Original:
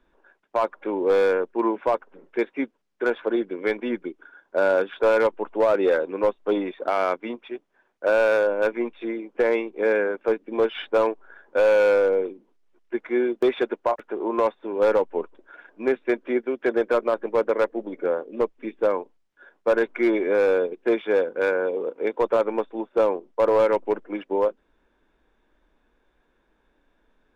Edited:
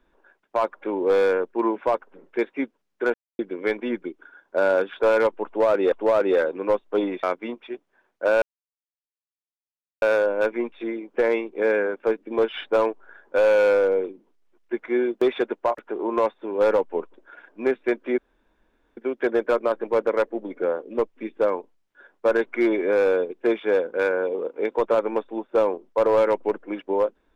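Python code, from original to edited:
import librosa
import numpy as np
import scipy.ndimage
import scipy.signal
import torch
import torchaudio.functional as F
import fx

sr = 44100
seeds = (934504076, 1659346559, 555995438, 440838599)

y = fx.edit(x, sr, fx.silence(start_s=3.14, length_s=0.25),
    fx.repeat(start_s=5.46, length_s=0.46, count=2),
    fx.cut(start_s=6.77, length_s=0.27),
    fx.insert_silence(at_s=8.23, length_s=1.6),
    fx.insert_room_tone(at_s=16.39, length_s=0.79), tone=tone)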